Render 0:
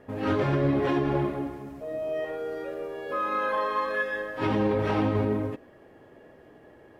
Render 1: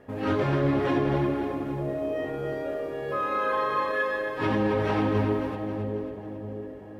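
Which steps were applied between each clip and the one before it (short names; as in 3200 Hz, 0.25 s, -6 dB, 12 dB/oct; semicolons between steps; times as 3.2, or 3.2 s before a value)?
split-band echo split 750 Hz, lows 0.641 s, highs 0.271 s, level -7 dB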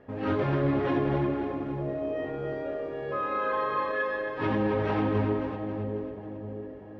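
air absorption 150 m; gain -1.5 dB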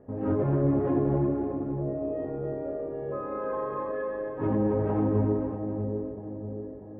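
Bessel low-pass 590 Hz, order 2; gain +2.5 dB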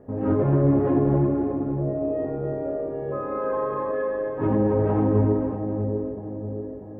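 flutter echo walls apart 8.5 m, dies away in 0.21 s; gain +4.5 dB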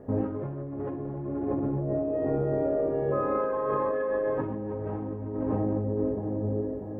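negative-ratio compressor -28 dBFS, ratio -1; gain -1.5 dB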